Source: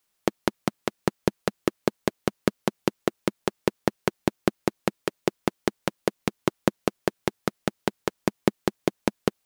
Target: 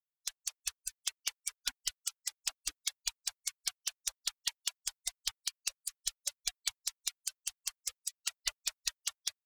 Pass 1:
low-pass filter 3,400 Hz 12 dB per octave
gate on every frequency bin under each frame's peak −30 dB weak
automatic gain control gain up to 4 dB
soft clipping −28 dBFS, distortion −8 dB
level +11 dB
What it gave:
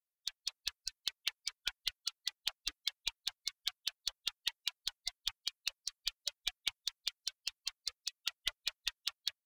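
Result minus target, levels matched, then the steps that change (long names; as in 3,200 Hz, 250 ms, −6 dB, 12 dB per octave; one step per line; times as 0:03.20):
8,000 Hz band −9.0 dB
change: low-pass filter 11,000 Hz 12 dB per octave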